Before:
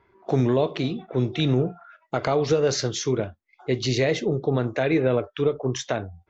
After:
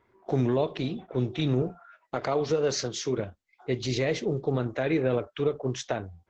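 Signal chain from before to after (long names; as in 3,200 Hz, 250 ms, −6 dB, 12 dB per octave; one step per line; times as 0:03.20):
0:01.62–0:03.18: high-pass filter 140 Hz 12 dB per octave
level −4 dB
Opus 12 kbit/s 48,000 Hz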